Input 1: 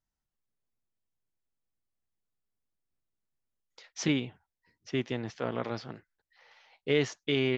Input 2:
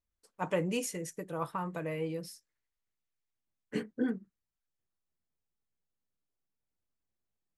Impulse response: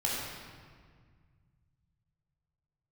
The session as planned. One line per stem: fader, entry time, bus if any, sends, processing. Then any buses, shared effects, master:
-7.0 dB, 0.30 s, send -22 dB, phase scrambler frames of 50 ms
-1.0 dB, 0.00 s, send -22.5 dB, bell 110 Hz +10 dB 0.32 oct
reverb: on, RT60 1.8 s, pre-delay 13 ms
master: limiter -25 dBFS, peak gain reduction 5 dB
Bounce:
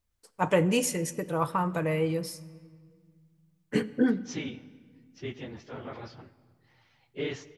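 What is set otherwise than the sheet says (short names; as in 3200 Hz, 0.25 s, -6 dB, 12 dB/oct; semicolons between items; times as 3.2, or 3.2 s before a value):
stem 2 -1.0 dB -> +7.5 dB; master: missing limiter -25 dBFS, peak gain reduction 5 dB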